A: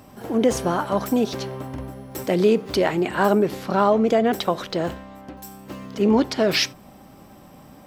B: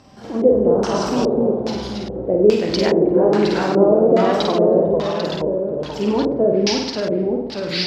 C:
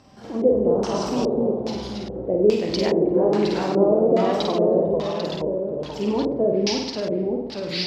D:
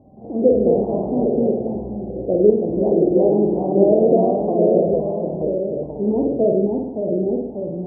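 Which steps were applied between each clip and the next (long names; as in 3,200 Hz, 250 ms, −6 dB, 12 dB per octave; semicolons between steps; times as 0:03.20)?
flutter between parallel walls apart 8.2 metres, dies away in 0.78 s; delay with pitch and tempo change per echo 189 ms, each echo −1 semitone, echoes 3; auto-filter low-pass square 1.2 Hz 510–5,200 Hz; level −2.5 dB
dynamic equaliser 1,500 Hz, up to −6 dB, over −43 dBFS, Q 2.7; level −4 dB
elliptic low-pass filter 730 Hz, stop band 60 dB; level +4 dB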